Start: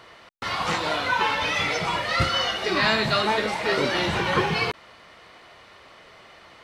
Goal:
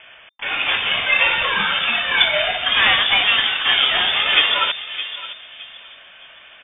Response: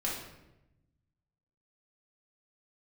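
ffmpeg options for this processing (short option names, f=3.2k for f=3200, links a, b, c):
-filter_complex "[0:a]aeval=exprs='0.355*(cos(1*acos(clip(val(0)/0.355,-1,1)))-cos(1*PI/2))+0.0126*(cos(3*acos(clip(val(0)/0.355,-1,1)))-cos(3*PI/2))+0.00251*(cos(4*acos(clip(val(0)/0.355,-1,1)))-cos(4*PI/2))+0.01*(cos(7*acos(clip(val(0)/0.355,-1,1)))-cos(7*PI/2))+0.01*(cos(8*acos(clip(val(0)/0.355,-1,1)))-cos(8*PI/2))':c=same,asplit=2[a][b];[b]asetrate=88200,aresample=44100,atempo=0.5,volume=-12dB[c];[a][c]amix=inputs=2:normalize=0,asplit=2[d][e];[e]adelay=615,lowpass=f=1.4k:p=1,volume=-11dB,asplit=2[f][g];[g]adelay=615,lowpass=f=1.4k:p=1,volume=0.32,asplit=2[h][i];[i]adelay=615,lowpass=f=1.4k:p=1,volume=0.32[j];[f][h][j]amix=inputs=3:normalize=0[k];[d][k]amix=inputs=2:normalize=0,lowpass=f=3.1k:t=q:w=0.5098,lowpass=f=3.1k:t=q:w=0.6013,lowpass=f=3.1k:t=q:w=0.9,lowpass=f=3.1k:t=q:w=2.563,afreqshift=-3600,volume=7.5dB"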